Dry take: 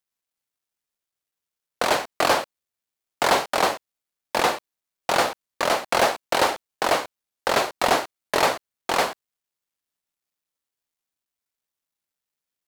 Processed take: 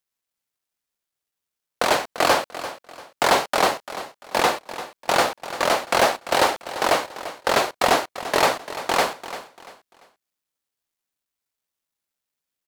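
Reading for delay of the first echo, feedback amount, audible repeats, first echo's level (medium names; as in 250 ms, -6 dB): 343 ms, 31%, 3, -13.5 dB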